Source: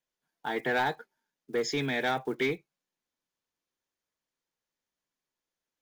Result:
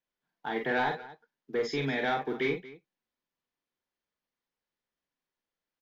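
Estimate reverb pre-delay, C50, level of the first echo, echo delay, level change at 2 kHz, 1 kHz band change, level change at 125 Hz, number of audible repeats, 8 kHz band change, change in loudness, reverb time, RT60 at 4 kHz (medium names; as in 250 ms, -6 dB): no reverb, no reverb, -5.0 dB, 44 ms, -1.0 dB, 0.0 dB, 0.0 dB, 2, no reading, -0.5 dB, no reverb, no reverb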